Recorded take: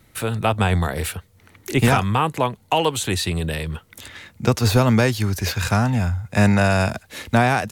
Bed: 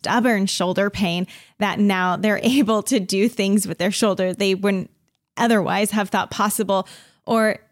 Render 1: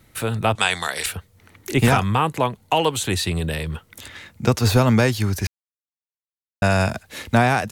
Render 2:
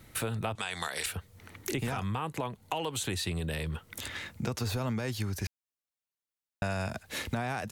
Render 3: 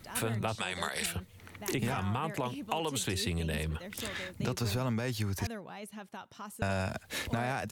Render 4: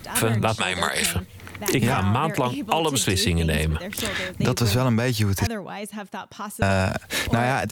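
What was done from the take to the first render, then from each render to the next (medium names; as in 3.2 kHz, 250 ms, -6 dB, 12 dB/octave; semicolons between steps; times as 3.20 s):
0.55–1.06 s: frequency weighting ITU-R 468; 5.47–6.62 s: mute
peak limiter -11.5 dBFS, peak gain reduction 8.5 dB; compression 4:1, threshold -32 dBFS, peak gain reduction 14 dB
add bed -25 dB
trim +11.5 dB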